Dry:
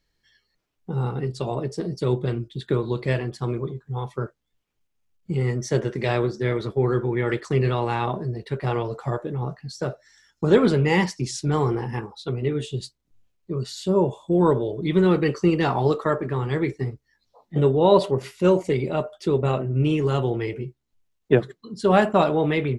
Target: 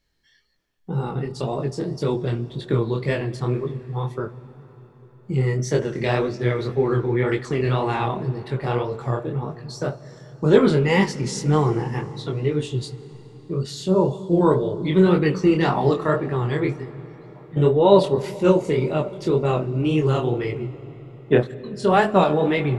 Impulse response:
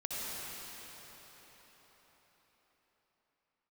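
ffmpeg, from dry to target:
-filter_complex "[0:a]asettb=1/sr,asplit=3[link_01][link_02][link_03];[link_01]atrim=end=16.764[link_04];[link_02]atrim=start=16.76:end=17.57,asetpts=PTS-STARTPTS,afade=type=in:duration=0.004:curve=qsin,afade=type=out:start_time=0.806:duration=0.004:curve=qsin,acompressor=threshold=-36dB:ratio=2.5[link_05];[link_03]atrim=start=17.566[link_06];[link_04][link_05]acrossfade=duration=0.004:curve1=hsin:curve2=qsin[link_07];[link_07][link_06]acrossfade=duration=0.004:curve1=qsin:curve2=hsin,flanger=delay=19.5:depth=7.3:speed=1.9,asplit=2[link_08][link_09];[1:a]atrim=start_sample=2205,lowshelf=frequency=210:gain=10,adelay=71[link_10];[link_09][link_10]afir=irnorm=-1:irlink=0,volume=-22dB[link_11];[link_08][link_11]amix=inputs=2:normalize=0,volume=4.5dB"

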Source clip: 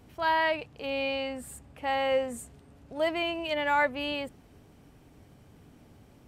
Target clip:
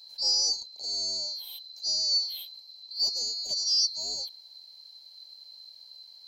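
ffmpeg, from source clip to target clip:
ffmpeg -i in.wav -filter_complex "[0:a]afftfilt=real='real(if(lt(b,736),b+184*(1-2*mod(floor(b/184),2)),b),0)':imag='imag(if(lt(b,736),b+184*(1-2*mod(floor(b/184),2)),b),0)':win_size=2048:overlap=0.75,superequalizer=6b=0.631:10b=0.282:11b=0.398:13b=2.24:15b=0.501,acrossover=split=490|1400[link_01][link_02][link_03];[link_01]aeval=exprs='val(0)*sin(2*PI*180*n/s)':channel_layout=same[link_04];[link_02]acontrast=71[link_05];[link_04][link_05][link_03]amix=inputs=3:normalize=0" out.wav

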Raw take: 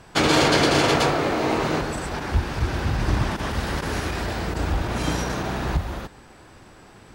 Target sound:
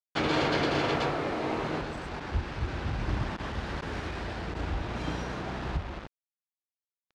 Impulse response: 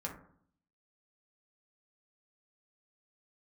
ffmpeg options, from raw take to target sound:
-af "acrusher=bits=4:mix=0:aa=0.5,areverse,acompressor=mode=upward:threshold=-42dB:ratio=2.5,areverse,lowpass=3800,volume=-8.5dB"

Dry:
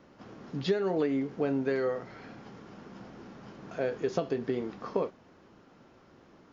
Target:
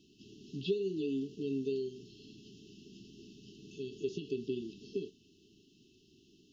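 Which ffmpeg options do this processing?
ffmpeg -i in.wav -filter_complex "[0:a]tiltshelf=frequency=710:gain=-5.5,afftfilt=real='re*(1-between(b*sr/4096,440,2600))':imag='im*(1-between(b*sr/4096,440,2600))':win_size=4096:overlap=0.75,acrossover=split=3000[link_01][link_02];[link_02]acompressor=threshold=-56dB:ratio=4:attack=1:release=60[link_03];[link_01][link_03]amix=inputs=2:normalize=0,volume=-1.5dB" out.wav

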